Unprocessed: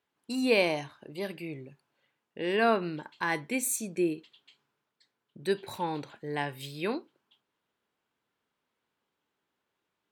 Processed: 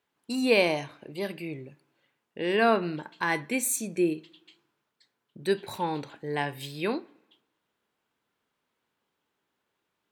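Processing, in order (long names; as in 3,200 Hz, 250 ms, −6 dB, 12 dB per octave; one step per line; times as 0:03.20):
on a send: low-pass filter 2,400 Hz 6 dB per octave + convolution reverb RT60 1.0 s, pre-delay 24 ms, DRR 18 dB
on the sum: level +2.5 dB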